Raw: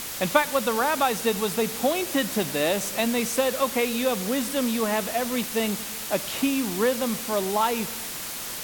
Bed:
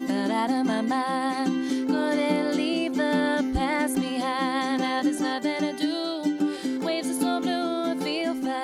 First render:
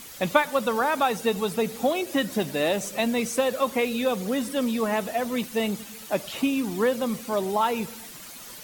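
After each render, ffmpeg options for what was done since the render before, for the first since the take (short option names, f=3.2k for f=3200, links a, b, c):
-af "afftdn=nr=11:nf=-34"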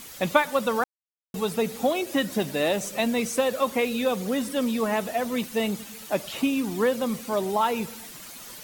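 -filter_complex "[0:a]asplit=3[a][b][c];[a]atrim=end=0.84,asetpts=PTS-STARTPTS,afade=t=out:st=0.836:d=0.004:c=hsin[d];[b]atrim=start=0.84:end=1.34,asetpts=PTS-STARTPTS,volume=0[e];[c]atrim=start=1.34,asetpts=PTS-STARTPTS,afade=t=in:d=0.004:c=hsin[f];[d][e][f]concat=n=3:v=0:a=1"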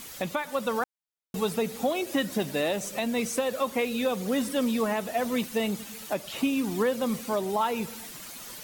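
-af "alimiter=limit=-16.5dB:level=0:latency=1:release=330"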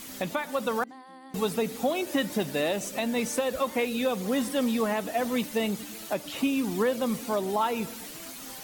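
-filter_complex "[1:a]volume=-22dB[a];[0:a][a]amix=inputs=2:normalize=0"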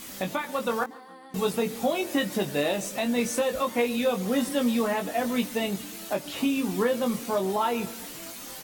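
-filter_complex "[0:a]asplit=2[a][b];[b]adelay=21,volume=-5dB[c];[a][c]amix=inputs=2:normalize=0,aecho=1:1:143|286|429:0.0708|0.0333|0.0156"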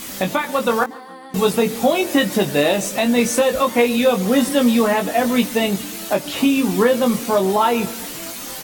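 -af "volume=9.5dB"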